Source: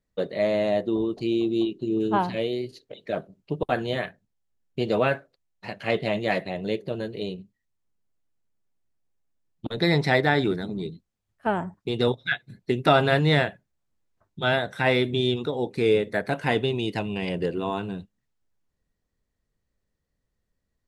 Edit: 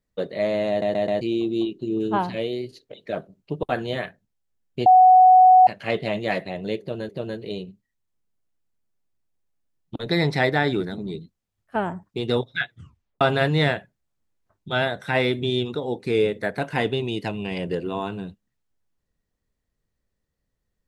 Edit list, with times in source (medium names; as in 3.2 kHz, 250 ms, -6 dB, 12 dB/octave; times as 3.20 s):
0.69 s: stutter in place 0.13 s, 4 plays
4.86–5.67 s: bleep 742 Hz -8.5 dBFS
6.80–7.09 s: loop, 2 plays
12.41 s: tape stop 0.51 s